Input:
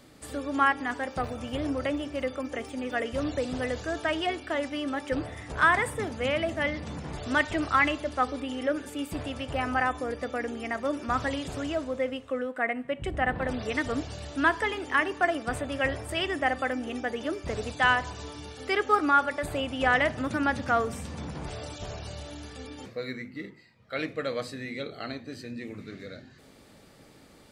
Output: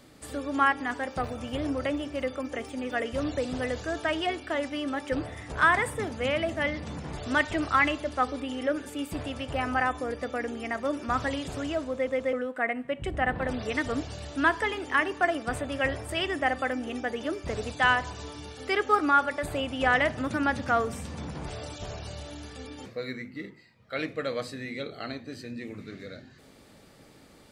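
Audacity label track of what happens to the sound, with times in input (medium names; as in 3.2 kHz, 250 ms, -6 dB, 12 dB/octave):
11.940000	11.940000	stutter in place 0.13 s, 3 plays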